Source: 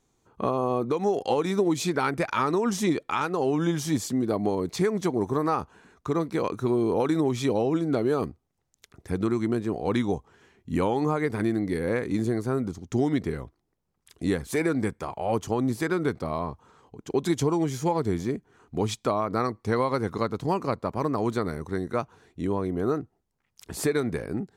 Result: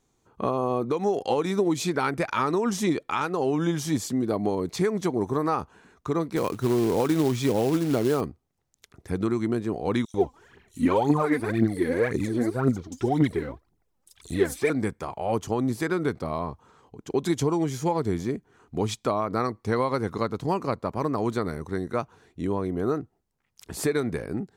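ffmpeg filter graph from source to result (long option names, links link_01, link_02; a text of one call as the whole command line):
ffmpeg -i in.wav -filter_complex "[0:a]asettb=1/sr,asplit=3[link_01][link_02][link_03];[link_01]atrim=end=6.364[link_04];[link_02]atrim=start=6.36:end=8.21,asetpts=PTS-STARTPTS,afade=type=in:duration=0.004:curve=qsin,afade=type=out:start_time=1.846:duration=0.004:curve=qsin,highpass=53,lowshelf=frequency=170:gain=4.5,acrusher=bits=4:mode=log:mix=0:aa=0.000001[link_05];[link_03]atrim=start=8.206[link_06];[link_04][link_05]acrossfade=duration=0.004:curve1=hsin:curve2=qsin[link_07];[link_07][link_06]acrossfade=duration=0.004:curve1=qsin:curve2=hsin,asettb=1/sr,asplit=3[link_08][link_09][link_10];[link_08]atrim=end=10.054[link_11];[link_09]atrim=start=10.05:end=14.7,asetpts=PTS-STARTPTS,afade=type=in:duration=0.004:curve=qsin,afade=type=out:start_time=4.646:duration=0.004:curve=qsin,acrossover=split=4500[link_12][link_13];[link_12]adelay=90[link_14];[link_14][link_13]amix=inputs=2:normalize=0,atrim=end_sample=205065,aphaser=in_gain=1:out_gain=1:delay=4.1:decay=0.7:speed=1.9:type=triangular[link_15];[link_10]atrim=start=14.696[link_16];[link_11][link_15]acrossfade=duration=0.004:curve1=hsin:curve2=qsin[link_17];[link_17][link_16]acrossfade=duration=0.004:curve1=qsin:curve2=hsin" out.wav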